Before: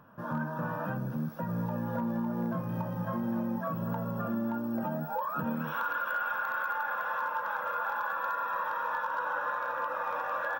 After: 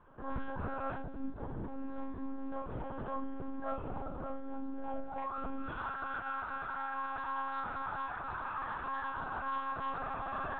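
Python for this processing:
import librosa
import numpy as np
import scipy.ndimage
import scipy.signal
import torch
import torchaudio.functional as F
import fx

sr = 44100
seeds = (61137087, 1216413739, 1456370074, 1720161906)

y = fx.tilt_shelf(x, sr, db=4.0, hz=720.0, at=(1.18, 1.87), fade=0.02)
y = fx.rider(y, sr, range_db=10, speed_s=0.5)
y = fx.comb_fb(y, sr, f0_hz=260.0, decay_s=0.21, harmonics='all', damping=0.0, mix_pct=70)
y = np.clip(10.0 ** (33.5 / 20.0) * y, -1.0, 1.0) / 10.0 ** (33.5 / 20.0)
y = fx.comb_fb(y, sr, f0_hz=650.0, decay_s=0.17, harmonics='all', damping=0.0, mix_pct=70)
y = fx.cheby_harmonics(y, sr, harmonics=(2, 3, 4, 5), levels_db=(-37, -30, -42, -37), full_scale_db=-38.5)
y = fx.echo_feedback(y, sr, ms=1062, feedback_pct=32, wet_db=-20.5)
y = fx.rev_schroeder(y, sr, rt60_s=0.34, comb_ms=26, drr_db=-1.0)
y = fx.lpc_monotone(y, sr, seeds[0], pitch_hz=270.0, order=10)
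y = y * librosa.db_to_amplitude(8.5)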